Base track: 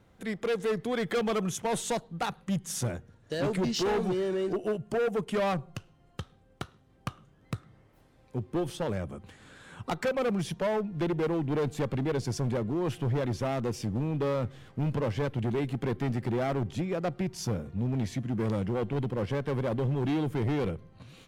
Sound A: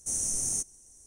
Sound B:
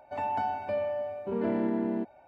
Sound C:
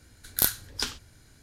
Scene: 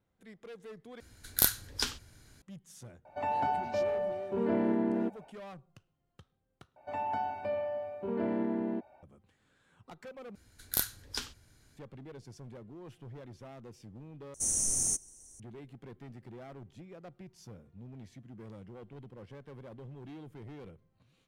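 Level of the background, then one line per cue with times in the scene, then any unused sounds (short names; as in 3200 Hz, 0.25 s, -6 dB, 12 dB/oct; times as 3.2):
base track -18.5 dB
1 replace with C -2 dB
3.05 add B -0.5 dB
6.76 replace with B -3.5 dB
10.35 replace with C -7 dB
14.34 replace with A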